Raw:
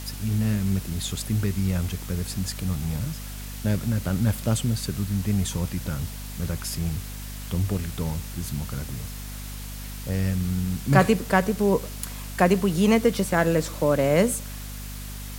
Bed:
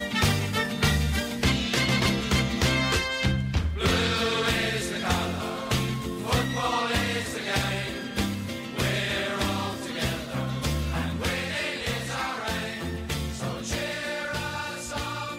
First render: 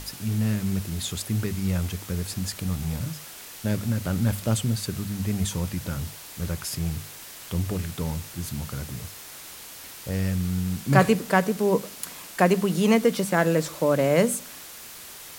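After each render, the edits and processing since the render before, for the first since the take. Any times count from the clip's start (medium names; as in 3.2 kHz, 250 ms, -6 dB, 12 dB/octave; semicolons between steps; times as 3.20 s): hum notches 50/100/150/200/250 Hz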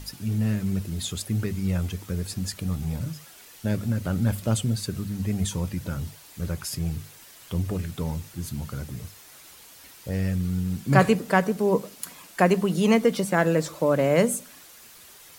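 noise reduction 8 dB, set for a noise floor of -42 dBFS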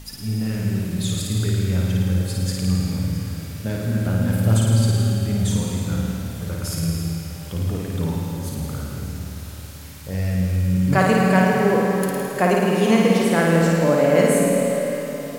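flutter echo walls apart 9.3 m, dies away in 1.1 s; algorithmic reverb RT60 4.4 s, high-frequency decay 0.75×, pre-delay 90 ms, DRR 1.5 dB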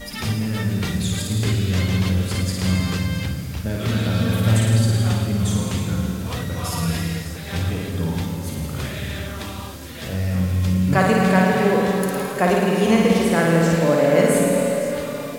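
add bed -5.5 dB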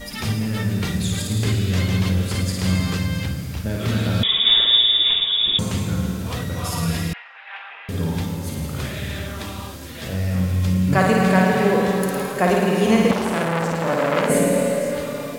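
4.23–5.59 s: frequency inversion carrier 3.6 kHz; 7.13–7.89 s: Chebyshev band-pass 820–2800 Hz, order 3; 13.11–14.30 s: transformer saturation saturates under 1.8 kHz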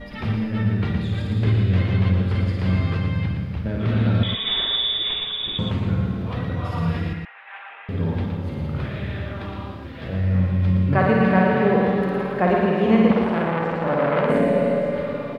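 distance through air 400 m; delay 117 ms -6 dB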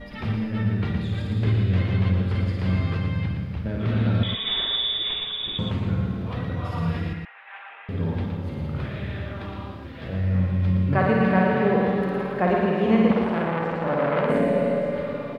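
trim -2.5 dB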